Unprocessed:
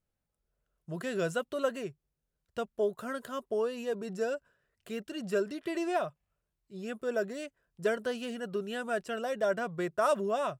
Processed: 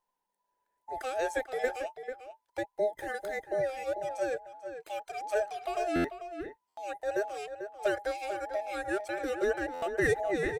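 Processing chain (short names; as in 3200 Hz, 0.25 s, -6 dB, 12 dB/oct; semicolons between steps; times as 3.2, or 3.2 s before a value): band inversion scrambler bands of 1000 Hz; outdoor echo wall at 76 m, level -9 dB; stuck buffer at 5.95/6.68/9.73, samples 512, times 7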